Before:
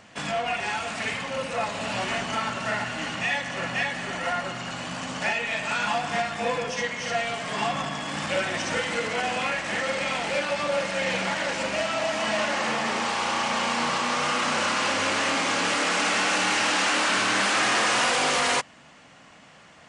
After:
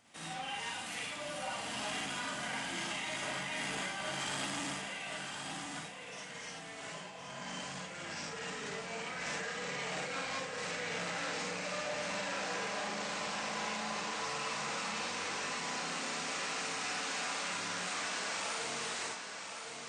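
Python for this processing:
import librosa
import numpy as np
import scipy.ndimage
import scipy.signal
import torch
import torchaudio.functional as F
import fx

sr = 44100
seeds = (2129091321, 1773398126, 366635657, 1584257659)

p1 = fx.doppler_pass(x, sr, speed_mps=33, closest_m=25.0, pass_at_s=6.24)
p2 = fx.over_compress(p1, sr, threshold_db=-43.0, ratio=-1.0)
p3 = fx.high_shelf(p2, sr, hz=6200.0, db=11.5)
p4 = p3 + fx.echo_feedback(p3, sr, ms=1064, feedback_pct=34, wet_db=-7, dry=0)
p5 = fx.rev_schroeder(p4, sr, rt60_s=0.35, comb_ms=38, drr_db=-3.0)
p6 = fx.transformer_sat(p5, sr, knee_hz=1300.0)
y = F.gain(torch.from_numpy(p6), -3.0).numpy()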